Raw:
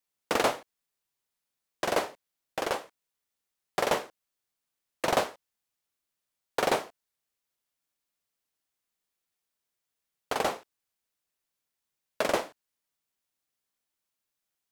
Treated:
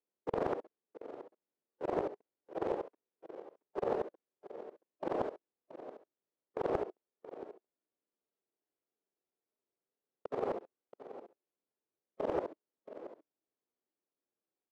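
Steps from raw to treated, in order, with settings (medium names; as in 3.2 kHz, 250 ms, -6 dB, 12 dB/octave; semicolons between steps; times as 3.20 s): time reversed locally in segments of 67 ms; harmonic-percussive split percussive -10 dB; reverse; compression, threshold -34 dBFS, peak gain reduction 8.5 dB; reverse; band-pass filter 380 Hz, Q 2; on a send: delay 677 ms -13.5 dB; on the sum: loudspeaker Doppler distortion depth 0.68 ms; trim +10.5 dB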